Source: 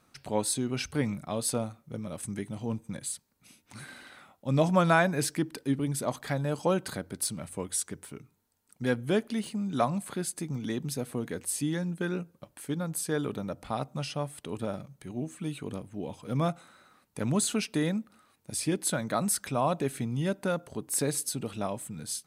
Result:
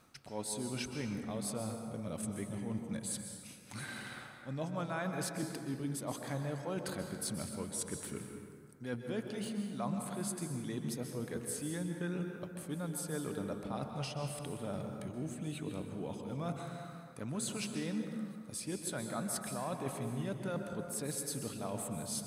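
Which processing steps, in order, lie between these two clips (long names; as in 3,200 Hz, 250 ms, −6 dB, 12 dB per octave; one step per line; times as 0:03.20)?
reversed playback
downward compressor 5 to 1, threshold −40 dBFS, peak gain reduction 19.5 dB
reversed playback
dense smooth reverb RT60 2.1 s, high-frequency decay 0.5×, pre-delay 115 ms, DRR 4 dB
level +2 dB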